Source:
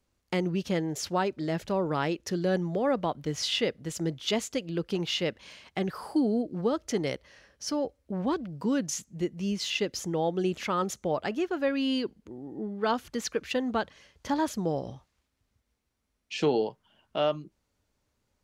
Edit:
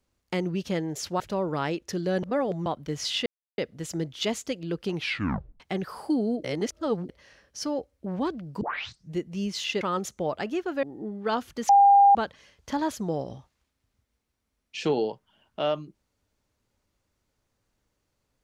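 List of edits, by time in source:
0:01.20–0:01.58: remove
0:02.61–0:03.04: reverse
0:03.64: splice in silence 0.32 s
0:05.01: tape stop 0.65 s
0:06.50–0:07.15: reverse
0:08.67: tape start 0.51 s
0:09.87–0:10.66: remove
0:11.68–0:12.40: remove
0:13.26–0:13.72: beep over 801 Hz −12.5 dBFS

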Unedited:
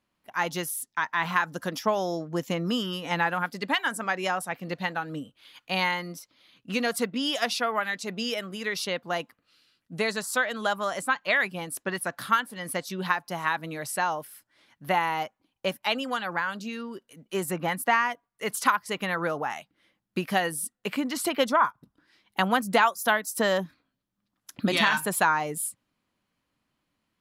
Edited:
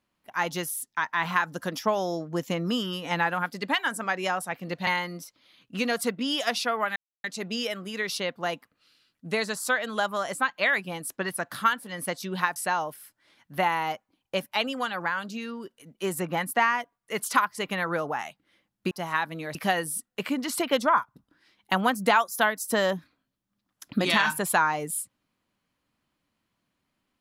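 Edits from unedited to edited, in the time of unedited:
0:04.87–0:05.82: remove
0:07.91: splice in silence 0.28 s
0:13.23–0:13.87: move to 0:20.22

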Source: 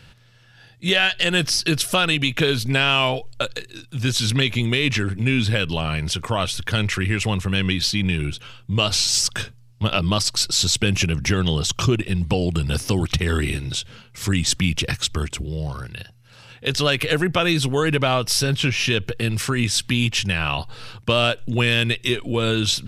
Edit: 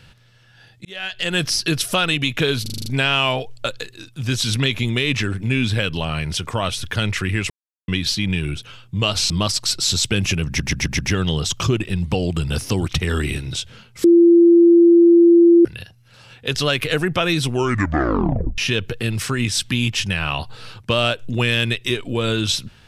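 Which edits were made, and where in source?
0:00.85–0:01.43: fade in
0:02.62: stutter 0.04 s, 7 plays
0:07.26–0:07.64: silence
0:09.06–0:10.01: remove
0:11.18: stutter 0.13 s, 5 plays
0:14.23–0:15.84: beep over 341 Hz −7 dBFS
0:17.65: tape stop 1.12 s

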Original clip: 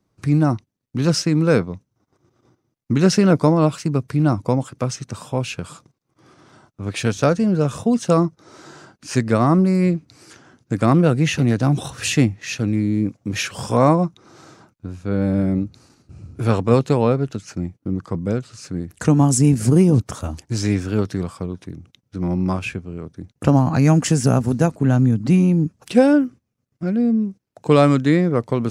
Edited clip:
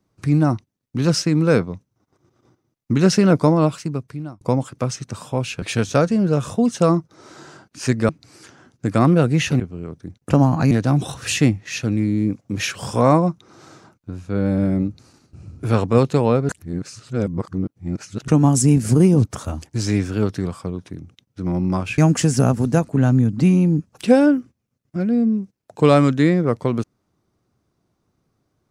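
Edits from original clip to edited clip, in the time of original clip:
0:03.58–0:04.41: fade out
0:05.62–0:06.90: remove
0:09.37–0:09.96: remove
0:17.25–0:19.04: reverse
0:22.74–0:23.85: move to 0:11.47

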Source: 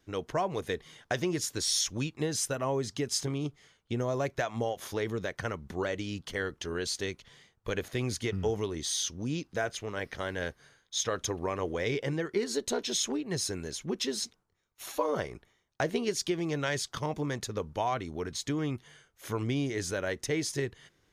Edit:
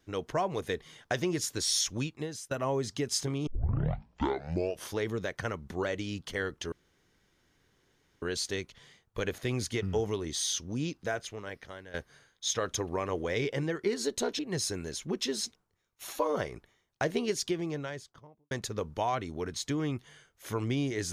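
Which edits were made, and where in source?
0:01.99–0:02.51: fade out, to −23 dB
0:03.47: tape start 1.45 s
0:06.72: splice in room tone 1.50 s
0:09.42–0:10.44: fade out linear, to −16.5 dB
0:12.89–0:13.18: remove
0:16.08–0:17.30: fade out and dull

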